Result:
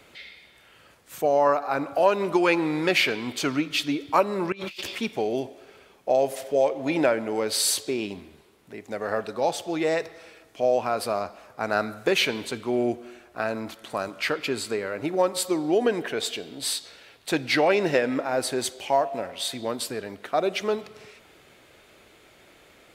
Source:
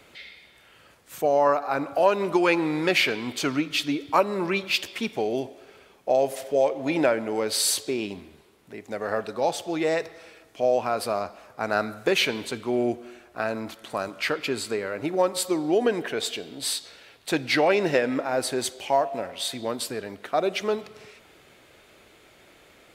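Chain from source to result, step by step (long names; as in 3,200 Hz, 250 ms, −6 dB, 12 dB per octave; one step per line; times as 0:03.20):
0:04.52–0:04.97: compressor whose output falls as the input rises −38 dBFS, ratio −1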